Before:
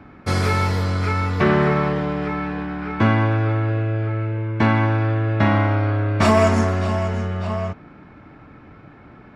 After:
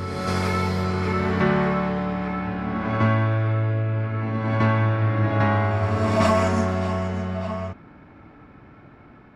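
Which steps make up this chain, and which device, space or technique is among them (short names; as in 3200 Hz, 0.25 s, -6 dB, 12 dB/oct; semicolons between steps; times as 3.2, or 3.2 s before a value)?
reverse reverb (reverse; reverb RT60 2.6 s, pre-delay 52 ms, DRR 2.5 dB; reverse); gain -5 dB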